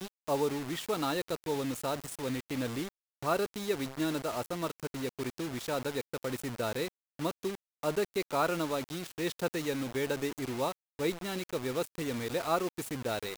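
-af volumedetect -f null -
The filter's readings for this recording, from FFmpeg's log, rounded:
mean_volume: -34.3 dB
max_volume: -16.4 dB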